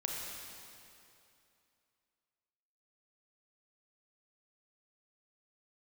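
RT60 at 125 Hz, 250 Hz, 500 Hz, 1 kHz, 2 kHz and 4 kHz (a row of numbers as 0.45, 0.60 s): 2.5, 2.7, 2.7, 2.7, 2.5, 2.4 s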